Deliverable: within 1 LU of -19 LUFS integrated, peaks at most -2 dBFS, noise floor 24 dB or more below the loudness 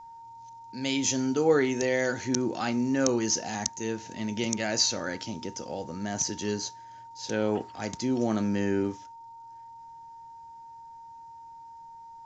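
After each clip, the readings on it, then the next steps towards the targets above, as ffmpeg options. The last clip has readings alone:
steady tone 920 Hz; tone level -44 dBFS; loudness -28.5 LUFS; peak level -9.0 dBFS; loudness target -19.0 LUFS
-> -af "bandreject=f=920:w=30"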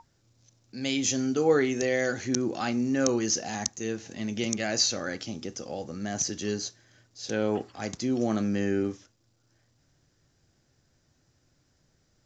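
steady tone not found; loudness -28.5 LUFS; peak level -8.5 dBFS; loudness target -19.0 LUFS
-> -af "volume=2.99,alimiter=limit=0.794:level=0:latency=1"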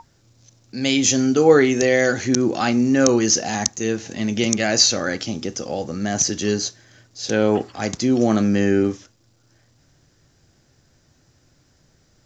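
loudness -19.0 LUFS; peak level -2.0 dBFS; noise floor -60 dBFS

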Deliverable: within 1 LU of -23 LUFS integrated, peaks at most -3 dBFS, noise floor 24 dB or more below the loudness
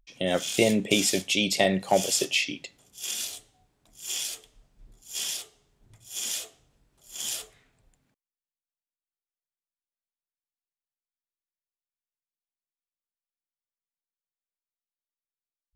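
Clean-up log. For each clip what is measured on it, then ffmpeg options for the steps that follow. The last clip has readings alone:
loudness -27.0 LUFS; peak level -5.5 dBFS; loudness target -23.0 LUFS
-> -af "volume=1.58,alimiter=limit=0.708:level=0:latency=1"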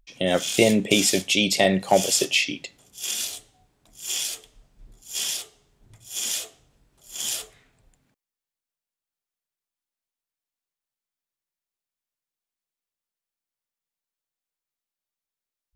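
loudness -23.0 LUFS; peak level -3.0 dBFS; noise floor -91 dBFS

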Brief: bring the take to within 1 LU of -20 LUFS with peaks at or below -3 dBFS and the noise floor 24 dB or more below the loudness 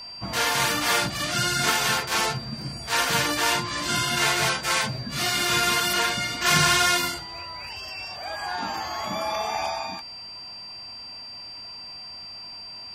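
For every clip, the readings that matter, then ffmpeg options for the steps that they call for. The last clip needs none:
steady tone 4.7 kHz; tone level -37 dBFS; loudness -23.5 LUFS; peak level -6.5 dBFS; loudness target -20.0 LUFS
-> -af "bandreject=f=4700:w=30"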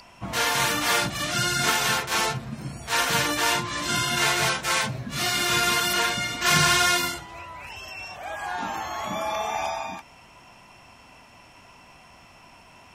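steady tone not found; loudness -23.5 LUFS; peak level -7.0 dBFS; loudness target -20.0 LUFS
-> -af "volume=1.5"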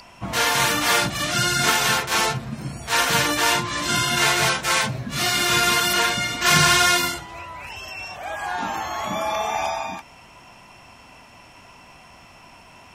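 loudness -20.0 LUFS; peak level -3.5 dBFS; noise floor -48 dBFS

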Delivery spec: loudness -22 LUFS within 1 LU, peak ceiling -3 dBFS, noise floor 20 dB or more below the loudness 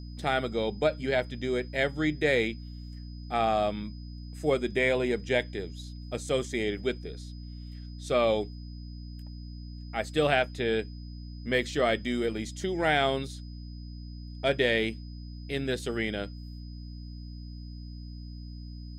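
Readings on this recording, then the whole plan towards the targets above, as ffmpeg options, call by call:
hum 60 Hz; highest harmonic 300 Hz; hum level -39 dBFS; steady tone 5 kHz; tone level -55 dBFS; loudness -29.0 LUFS; peak level -10.5 dBFS; loudness target -22.0 LUFS
-> -af "bandreject=f=60:t=h:w=6,bandreject=f=120:t=h:w=6,bandreject=f=180:t=h:w=6,bandreject=f=240:t=h:w=6,bandreject=f=300:t=h:w=6"
-af "bandreject=f=5000:w=30"
-af "volume=2.24"

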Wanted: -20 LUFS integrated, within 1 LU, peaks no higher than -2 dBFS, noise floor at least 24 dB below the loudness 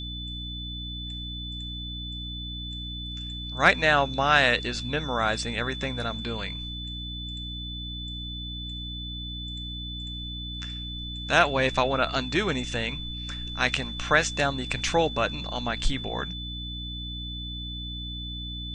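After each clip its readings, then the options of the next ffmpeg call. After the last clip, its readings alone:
hum 60 Hz; highest harmonic 300 Hz; hum level -35 dBFS; steady tone 3.5 kHz; tone level -36 dBFS; loudness -28.0 LUFS; peak level -4.5 dBFS; loudness target -20.0 LUFS
-> -af "bandreject=f=60:t=h:w=4,bandreject=f=120:t=h:w=4,bandreject=f=180:t=h:w=4,bandreject=f=240:t=h:w=4,bandreject=f=300:t=h:w=4"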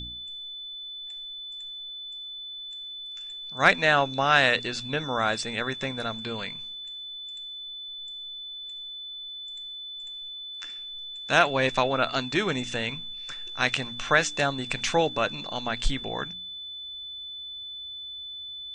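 hum not found; steady tone 3.5 kHz; tone level -36 dBFS
-> -af "bandreject=f=3500:w=30"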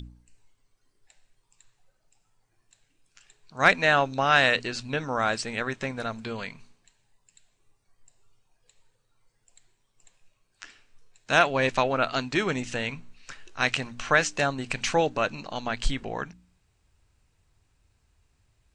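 steady tone not found; loudness -25.5 LUFS; peak level -4.5 dBFS; loudness target -20.0 LUFS
-> -af "volume=1.88,alimiter=limit=0.794:level=0:latency=1"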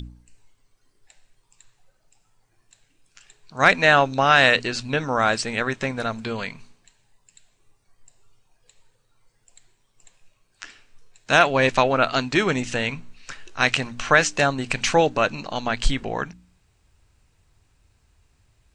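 loudness -20.5 LUFS; peak level -2.0 dBFS; noise floor -67 dBFS

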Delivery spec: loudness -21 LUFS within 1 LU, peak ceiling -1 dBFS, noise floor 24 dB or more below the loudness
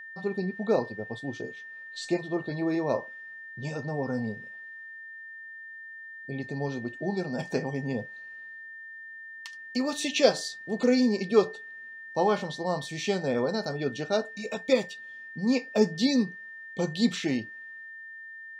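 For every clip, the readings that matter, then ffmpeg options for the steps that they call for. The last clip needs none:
steady tone 1.8 kHz; tone level -41 dBFS; loudness -29.0 LUFS; peak level -6.5 dBFS; loudness target -21.0 LUFS
-> -af "bandreject=f=1800:w=30"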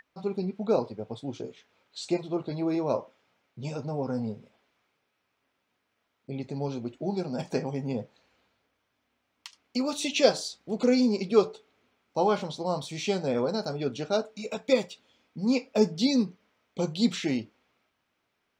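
steady tone not found; loudness -29.0 LUFS; peak level -7.0 dBFS; loudness target -21.0 LUFS
-> -af "volume=2.51,alimiter=limit=0.891:level=0:latency=1"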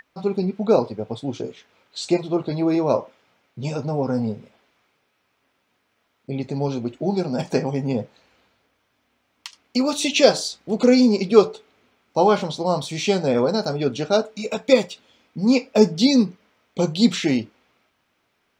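loudness -21.0 LUFS; peak level -1.0 dBFS; noise floor -70 dBFS

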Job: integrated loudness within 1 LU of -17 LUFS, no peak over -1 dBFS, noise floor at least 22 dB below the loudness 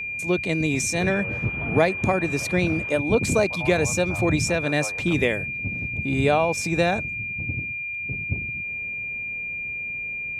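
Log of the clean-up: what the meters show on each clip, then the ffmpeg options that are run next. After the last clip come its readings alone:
steady tone 2.4 kHz; tone level -28 dBFS; loudness -23.5 LUFS; peak level -4.5 dBFS; loudness target -17.0 LUFS
-> -af "bandreject=f=2400:w=30"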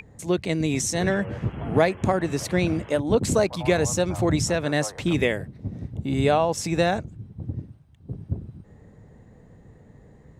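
steady tone not found; loudness -24.5 LUFS; peak level -5.0 dBFS; loudness target -17.0 LUFS
-> -af "volume=2.37,alimiter=limit=0.891:level=0:latency=1"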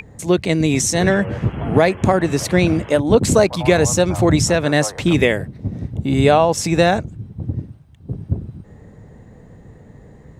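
loudness -17.0 LUFS; peak level -1.0 dBFS; noise floor -44 dBFS

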